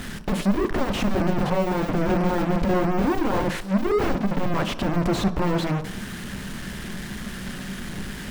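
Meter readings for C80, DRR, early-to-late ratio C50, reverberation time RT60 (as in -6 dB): 16.5 dB, 9.0 dB, 14.0 dB, 0.70 s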